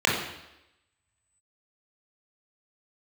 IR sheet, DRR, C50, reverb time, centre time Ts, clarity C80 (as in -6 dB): -4.5 dB, 3.0 dB, 0.90 s, 49 ms, 6.0 dB